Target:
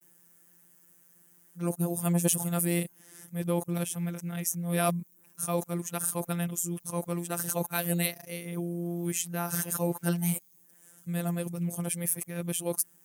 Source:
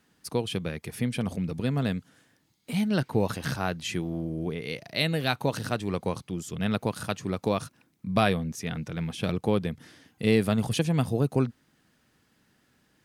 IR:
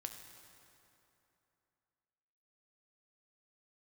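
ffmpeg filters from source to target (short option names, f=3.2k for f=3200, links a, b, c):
-filter_complex "[0:a]areverse,acrossover=split=3300[a][b];[b]aexciter=amount=14.7:drive=5.7:freq=6.3k[c];[a][c]amix=inputs=2:normalize=0,afftfilt=real='hypot(re,im)*cos(PI*b)':imag='0':win_size=1024:overlap=0.75,highpass=69,equalizer=f=8.1k:w=0.4:g=-7.5"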